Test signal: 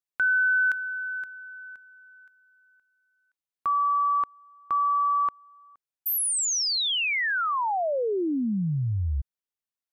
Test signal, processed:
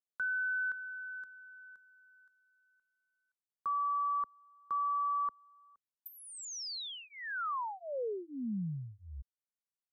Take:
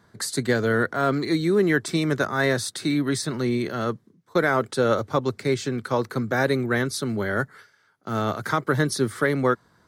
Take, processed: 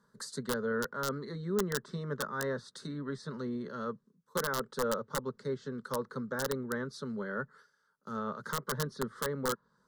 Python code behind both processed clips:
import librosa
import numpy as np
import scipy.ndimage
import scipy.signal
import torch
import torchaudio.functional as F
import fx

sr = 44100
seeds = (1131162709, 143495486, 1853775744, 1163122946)

y = fx.env_lowpass_down(x, sr, base_hz=2500.0, full_db=-20.0)
y = (np.mod(10.0 ** (11.5 / 20.0) * y + 1.0, 2.0) - 1.0) / 10.0 ** (11.5 / 20.0)
y = fx.fixed_phaser(y, sr, hz=480.0, stages=8)
y = F.gain(torch.from_numpy(y), -9.0).numpy()